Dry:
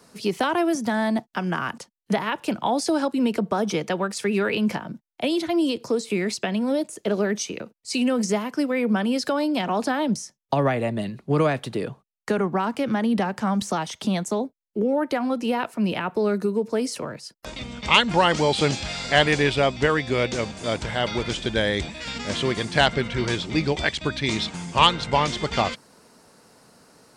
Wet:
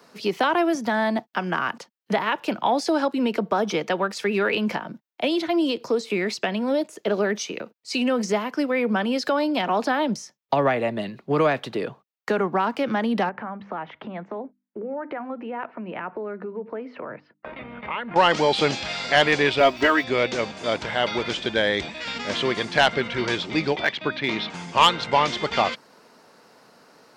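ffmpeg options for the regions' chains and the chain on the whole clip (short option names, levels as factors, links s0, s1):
-filter_complex "[0:a]asettb=1/sr,asplit=3[s0][s1][s2];[s0]atrim=end=13.294[s3];[s1]atrim=start=13.29:end=18.16,asetpts=PTS-STARTPTS,afade=t=in:d=0.004:c=qsin,afade=t=out:st=4.866:d=0.004:c=qsin,lowpass=f=2200:w=0.5412,lowpass=f=2200:w=1.3066,acompressor=threshold=0.0282:ratio=3:attack=3.2:release=140:knee=1:detection=peak,bandreject=f=50:t=h:w=6,bandreject=f=100:t=h:w=6,bandreject=f=150:t=h:w=6,bandreject=f=200:t=h:w=6,bandreject=f=250:t=h:w=6,bandreject=f=300:t=h:w=6[s4];[s2]atrim=start=18.156[s5];[s3][s4]acrossfade=d=0.004:c1=hsin:c2=qsin[s6];[s6][s5]acrossfade=d=0.004:c1=qsin:c2=hsin,asettb=1/sr,asplit=3[s7][s8][s9];[s7]atrim=end=19.604[s10];[s8]atrim=start=19.6:end=20.04,asetpts=PTS-STARTPTS,afade=t=in:d=0.004:c=qsin,afade=t=out:st=0.436:d=0.004:c=qsin,aecho=1:1:3.1:0.9,atrim=end_sample=19404,aeval=exprs='sgn(val(0))*max(abs(val(0))-0.00841,0)':c=same[s11];[s9]atrim=start=20.036[s12];[s10][s11]acrossfade=d=0.004:c1=hsin:c2=qsin[s13];[s13][s12]acrossfade=d=0.004:c1=qsin:c2=hsin,asettb=1/sr,asplit=3[s14][s15][s16];[s14]atrim=end=23.764[s17];[s15]atrim=start=23.76:end=24.5,asetpts=PTS-STARTPTS,afade=t=in:d=0.004:c=qsin,afade=t=out:st=0.736:d=0.004:c=qsin,highpass=110,lowpass=3400,asoftclip=type=hard:threshold=0.211[s18];[s16]atrim=start=24.496[s19];[s17][s18]acrossfade=d=0.004:c1=hsin:c2=qsin[s20];[s20][s19]acrossfade=d=0.004:c1=qsin:c2=hsin,highpass=f=390:p=1,equalizer=f=9200:w=1:g=-14,acontrast=89,volume=0.668"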